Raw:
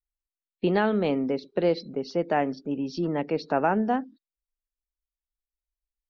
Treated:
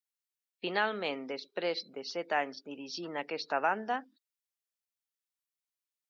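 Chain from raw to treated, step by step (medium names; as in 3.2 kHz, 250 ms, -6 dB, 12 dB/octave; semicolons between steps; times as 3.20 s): high-pass 350 Hz 6 dB/octave; tilt shelf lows -8 dB, about 720 Hz; trim -5.5 dB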